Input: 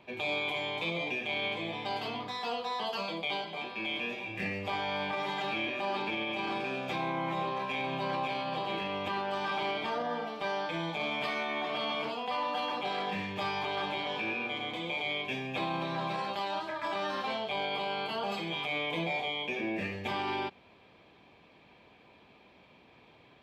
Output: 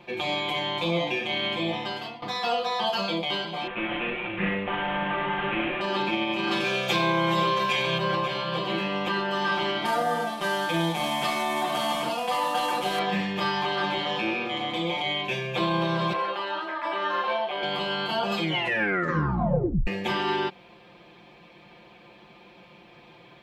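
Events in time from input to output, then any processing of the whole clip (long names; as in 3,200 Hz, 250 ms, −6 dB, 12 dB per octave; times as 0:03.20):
0:01.76–0:02.22: fade out, to −18 dB
0:03.67–0:05.81: variable-slope delta modulation 16 kbit/s
0:06.51–0:07.98: high-shelf EQ 2,800 Hz +11 dB
0:09.85–0:12.99: variable-slope delta modulation 64 kbit/s
0:16.13–0:17.63: three-way crossover with the lows and the highs turned down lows −23 dB, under 300 Hz, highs −16 dB, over 3,200 Hz
0:18.42: tape stop 1.45 s
whole clip: comb filter 5.7 ms, depth 93%; level +5.5 dB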